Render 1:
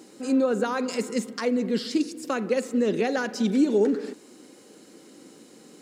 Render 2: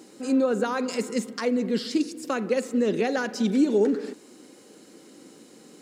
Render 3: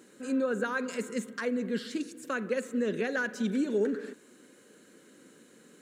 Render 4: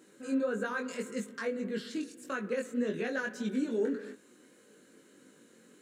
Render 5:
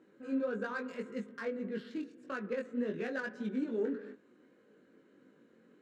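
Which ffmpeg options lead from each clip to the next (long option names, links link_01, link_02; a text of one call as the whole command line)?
ffmpeg -i in.wav -af anull out.wav
ffmpeg -i in.wav -af "equalizer=frequency=315:width_type=o:width=0.33:gain=-5,equalizer=frequency=800:width_type=o:width=0.33:gain=-9,equalizer=frequency=1600:width_type=o:width=0.33:gain=9,equalizer=frequency=5000:width_type=o:width=0.33:gain=-10,volume=-5.5dB" out.wav
ffmpeg -i in.wav -af "flanger=delay=19:depth=3.7:speed=1.7" out.wav
ffmpeg -i in.wav -af "adynamicsmooth=sensitivity=5.5:basefreq=2300,volume=-3dB" out.wav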